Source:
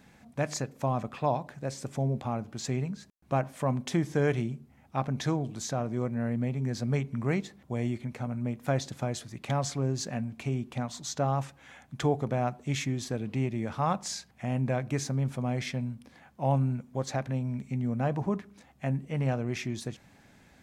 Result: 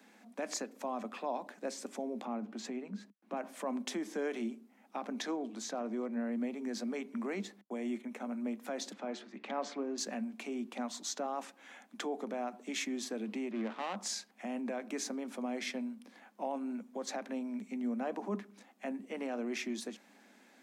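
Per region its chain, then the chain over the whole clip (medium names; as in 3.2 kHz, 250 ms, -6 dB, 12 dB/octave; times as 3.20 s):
2.25–3.37 s: tone controls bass +7 dB, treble -9 dB + compression 2.5:1, threshold -29 dBFS
5.22–6.33 s: treble shelf 7 kHz -9 dB + hard clipper -19 dBFS
7.61–8.25 s: gate -47 dBFS, range -32 dB + peaking EQ 4.6 kHz -13 dB 0.22 oct
8.93–9.98 s: low-pass 3.3 kHz + de-hum 72.65 Hz, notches 38
13.51–13.96 s: dead-time distortion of 0.24 ms + low-pass 3 kHz
whole clip: peak limiter -23 dBFS; steep high-pass 200 Hz 96 dB/octave; trim -2 dB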